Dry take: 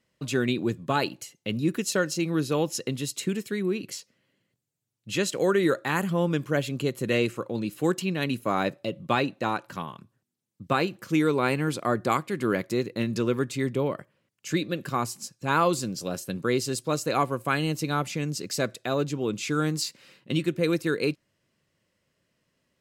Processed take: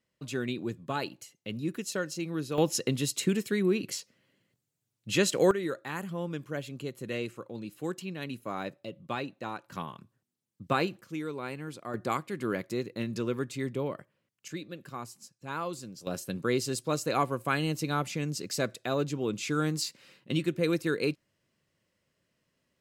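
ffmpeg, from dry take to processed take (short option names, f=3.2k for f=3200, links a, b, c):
-af "asetnsamples=n=441:p=0,asendcmd='2.58 volume volume 1dB;5.51 volume volume -10dB;9.72 volume volume -3dB;11.01 volume volume -13dB;11.94 volume volume -6dB;14.48 volume volume -12.5dB;16.07 volume volume -3dB',volume=-7.5dB"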